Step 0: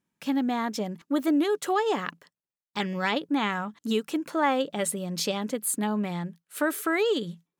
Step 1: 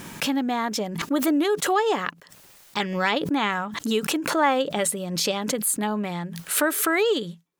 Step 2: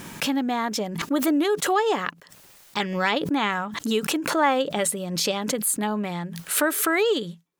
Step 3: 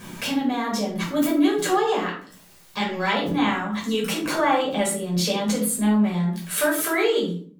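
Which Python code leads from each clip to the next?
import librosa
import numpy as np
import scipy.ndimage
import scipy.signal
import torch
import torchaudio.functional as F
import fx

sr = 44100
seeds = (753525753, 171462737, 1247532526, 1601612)

y1 = fx.peak_eq(x, sr, hz=210.0, db=-4.0, octaves=1.4)
y1 = fx.pre_swell(y1, sr, db_per_s=53.0)
y1 = y1 * librosa.db_to_amplitude(4.0)
y2 = y1
y3 = fx.room_shoebox(y2, sr, seeds[0], volume_m3=440.0, walls='furnished', distance_m=5.5)
y3 = y3 * librosa.db_to_amplitude(-8.0)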